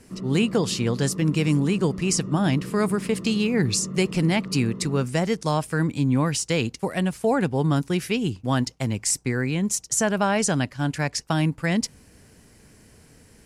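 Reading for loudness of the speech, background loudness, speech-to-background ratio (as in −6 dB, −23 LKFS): −24.0 LKFS, −35.0 LKFS, 11.0 dB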